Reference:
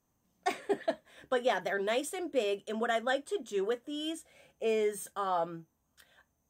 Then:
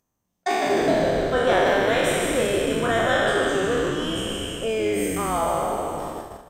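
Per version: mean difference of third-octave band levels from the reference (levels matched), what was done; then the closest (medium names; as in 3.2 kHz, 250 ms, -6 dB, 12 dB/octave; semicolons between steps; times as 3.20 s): 13.5 dB: spectral sustain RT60 2.92 s; frequency-shifting echo 152 ms, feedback 55%, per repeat -120 Hz, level -5 dB; upward compressor, threshold -28 dBFS; gate -34 dBFS, range -33 dB; trim +3.5 dB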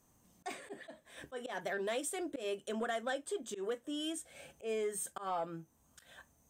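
5.0 dB: peaking EQ 8.9 kHz +6.5 dB 0.71 oct; compression 2:1, threshold -50 dBFS, peak gain reduction 14 dB; slow attack 104 ms; saturation -33 dBFS, distortion -25 dB; trim +7 dB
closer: second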